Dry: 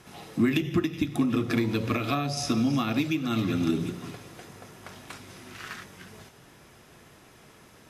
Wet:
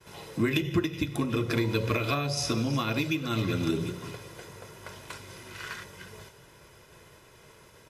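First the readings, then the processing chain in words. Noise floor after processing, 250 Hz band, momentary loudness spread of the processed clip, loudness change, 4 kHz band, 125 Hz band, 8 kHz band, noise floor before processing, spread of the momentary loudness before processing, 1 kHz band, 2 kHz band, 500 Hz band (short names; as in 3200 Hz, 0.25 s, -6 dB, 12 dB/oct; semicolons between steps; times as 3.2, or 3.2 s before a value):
-55 dBFS, -4.0 dB, 17 LU, -2.0 dB, +1.5 dB, +0.5 dB, +1.0 dB, -54 dBFS, 20 LU, -1.0 dB, +1.0 dB, +1.0 dB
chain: comb 2 ms, depth 55%; expander -50 dBFS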